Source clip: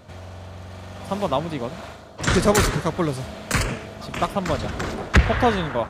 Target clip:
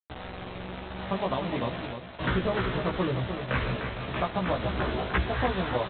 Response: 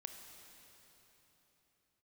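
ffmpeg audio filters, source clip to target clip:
-filter_complex "[0:a]afftdn=nr=13:nf=-36,lowpass=f=2400:p=1,bandreject=f=50:t=h:w=6,bandreject=f=100:t=h:w=6,bandreject=f=150:t=h:w=6,bandreject=f=200:t=h:w=6,bandreject=f=250:t=h:w=6,bandreject=f=300:t=h:w=6,bandreject=f=350:t=h:w=6,acompressor=threshold=0.0708:ratio=12,aresample=8000,acrusher=bits=5:mix=0:aa=0.000001,aresample=44100,asplit=2[s0][s1];[s1]adelay=16,volume=0.75[s2];[s0][s2]amix=inputs=2:normalize=0,aecho=1:1:301:0.422,volume=0.75"

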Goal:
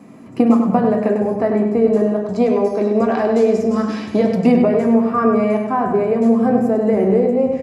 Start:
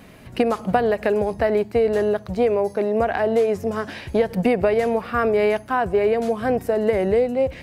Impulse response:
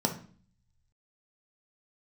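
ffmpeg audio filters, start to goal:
-filter_complex "[0:a]asettb=1/sr,asplit=3[s0][s1][s2];[s0]atrim=end=2.284[s3];[s1]atrim=start=2.28:end=4.52,asetpts=PTS-STARTPTS,afade=t=in:d=0.004:c=qsin,afade=t=out:st=2.236:d=0.004:c=qsin,equalizer=f=4400:w=0.73:g=12[s4];[s2]atrim=start=4.516[s5];[s3][s4]acrossfade=d=0.004:c1=hsin:c2=qsin[s6];[s6][s5]acrossfade=d=0.004:c1=qsin:c2=hsin,asplit=2[s7][s8];[s8]adelay=99,lowpass=f=4100:p=1,volume=0.562,asplit=2[s9][s10];[s10]adelay=99,lowpass=f=4100:p=1,volume=0.47,asplit=2[s11][s12];[s12]adelay=99,lowpass=f=4100:p=1,volume=0.47,asplit=2[s13][s14];[s14]adelay=99,lowpass=f=4100:p=1,volume=0.47,asplit=2[s15][s16];[s16]adelay=99,lowpass=f=4100:p=1,volume=0.47,asplit=2[s17][s18];[s18]adelay=99,lowpass=f=4100:p=1,volume=0.47[s19];[s7][s9][s11][s13][s15][s17][s19]amix=inputs=7:normalize=0[s20];[1:a]atrim=start_sample=2205,asetrate=57330,aresample=44100[s21];[s20][s21]afir=irnorm=-1:irlink=0,volume=0.376"

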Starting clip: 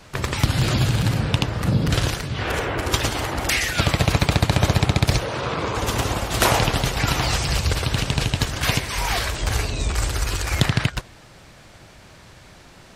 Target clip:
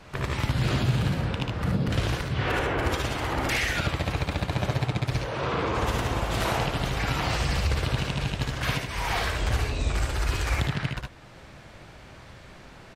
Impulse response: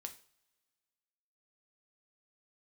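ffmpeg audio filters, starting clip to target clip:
-af "bass=f=250:g=0,treble=f=4000:g=-8,alimiter=limit=0.178:level=0:latency=1:release=496,aecho=1:1:58|73:0.501|0.596,volume=0.794"

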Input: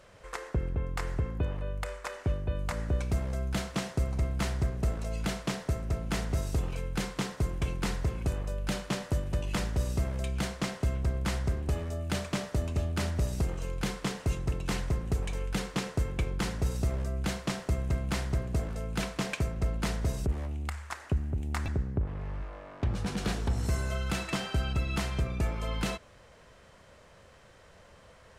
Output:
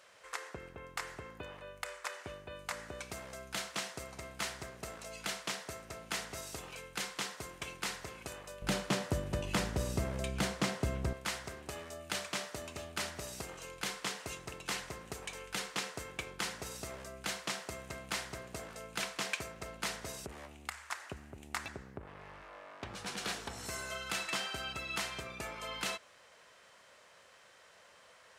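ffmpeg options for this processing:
-af "asetnsamples=n=441:p=0,asendcmd='8.62 highpass f 180;11.13 highpass f 1200',highpass=f=1400:p=1,volume=1.12"

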